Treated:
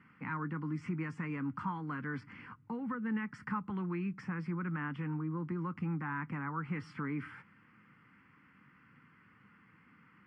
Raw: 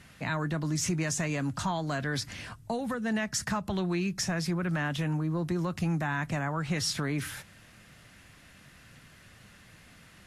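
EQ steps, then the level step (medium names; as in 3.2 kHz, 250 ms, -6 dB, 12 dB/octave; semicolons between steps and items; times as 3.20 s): distance through air 490 m; cabinet simulation 270–7800 Hz, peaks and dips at 380 Hz -8 dB, 580 Hz -8 dB, 1.7 kHz -9 dB, 2.6 kHz -5 dB, 6.5 kHz -10 dB; static phaser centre 1.6 kHz, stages 4; +3.5 dB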